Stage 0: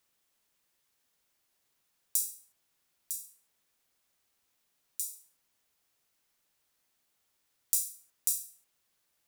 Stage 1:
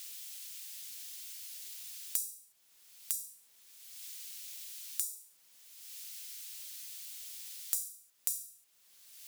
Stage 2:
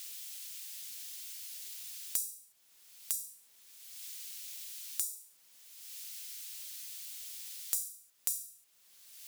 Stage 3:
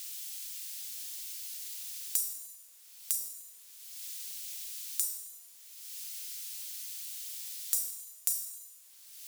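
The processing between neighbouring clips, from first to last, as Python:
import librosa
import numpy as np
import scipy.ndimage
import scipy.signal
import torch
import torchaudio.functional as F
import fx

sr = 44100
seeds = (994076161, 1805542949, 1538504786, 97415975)

y1 = fx.low_shelf(x, sr, hz=130.0, db=-6.0)
y1 = fx.band_squash(y1, sr, depth_pct=100)
y1 = F.gain(torch.from_numpy(y1), 1.0).numpy()
y2 = 10.0 ** (-9.0 / 20.0) * np.tanh(y1 / 10.0 ** (-9.0 / 20.0))
y2 = F.gain(torch.from_numpy(y2), 1.0).numpy()
y3 = fx.bass_treble(y2, sr, bass_db=-9, treble_db=3)
y3 = fx.rev_schroeder(y3, sr, rt60_s=1.3, comb_ms=33, drr_db=7.0)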